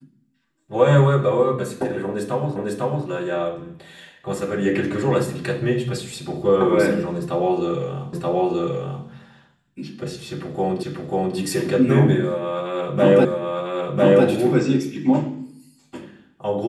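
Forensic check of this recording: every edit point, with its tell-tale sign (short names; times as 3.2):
2.56 repeat of the last 0.5 s
8.13 repeat of the last 0.93 s
10.83 repeat of the last 0.54 s
13.25 repeat of the last 1 s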